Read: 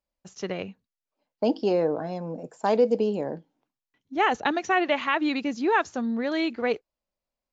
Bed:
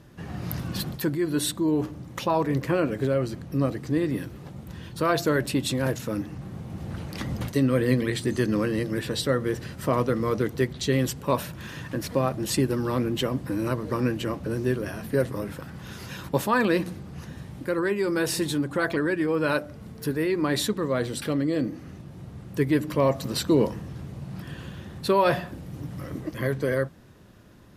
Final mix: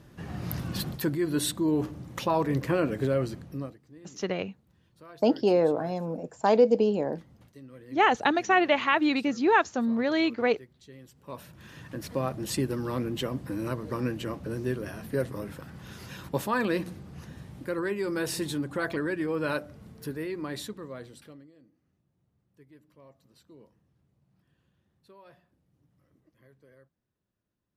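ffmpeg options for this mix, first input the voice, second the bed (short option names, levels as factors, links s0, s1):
-filter_complex "[0:a]adelay=3800,volume=1.12[s0];[1:a]volume=8.91,afade=t=out:st=3.22:d=0.56:silence=0.0630957,afade=t=in:st=11.11:d=1.17:silence=0.0891251,afade=t=out:st=19.47:d=2.05:silence=0.0398107[s1];[s0][s1]amix=inputs=2:normalize=0"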